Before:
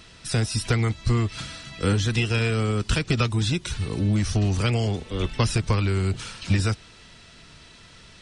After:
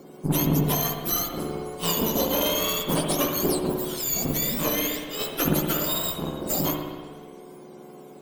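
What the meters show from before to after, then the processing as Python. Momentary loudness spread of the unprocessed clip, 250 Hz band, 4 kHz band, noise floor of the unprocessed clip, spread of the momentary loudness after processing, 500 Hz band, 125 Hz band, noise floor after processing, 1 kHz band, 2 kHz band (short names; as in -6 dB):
6 LU, +0.5 dB, +2.0 dB, -49 dBFS, 9 LU, +2.5 dB, -8.5 dB, -45 dBFS, +3.0 dB, -4.5 dB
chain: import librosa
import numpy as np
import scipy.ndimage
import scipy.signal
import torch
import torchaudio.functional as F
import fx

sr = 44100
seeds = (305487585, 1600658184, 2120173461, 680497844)

p1 = fx.octave_mirror(x, sr, pivot_hz=1200.0)
p2 = fx.cheby_harmonics(p1, sr, harmonics=(6,), levels_db=(-16,), full_scale_db=-11.5)
p3 = p2 + fx.echo_feedback(p2, sr, ms=90, feedback_pct=46, wet_db=-20.5, dry=0)
y = fx.rev_spring(p3, sr, rt60_s=1.5, pass_ms=(60,), chirp_ms=70, drr_db=2.0)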